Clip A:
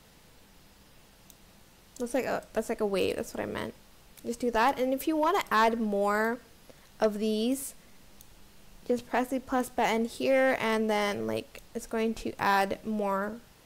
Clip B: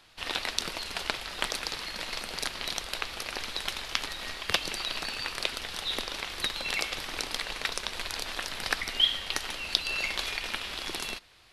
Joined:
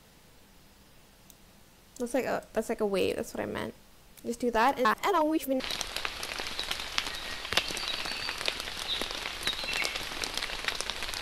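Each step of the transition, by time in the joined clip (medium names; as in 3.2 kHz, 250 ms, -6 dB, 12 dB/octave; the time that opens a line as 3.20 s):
clip A
4.85–5.60 s: reverse
5.60 s: go over to clip B from 2.57 s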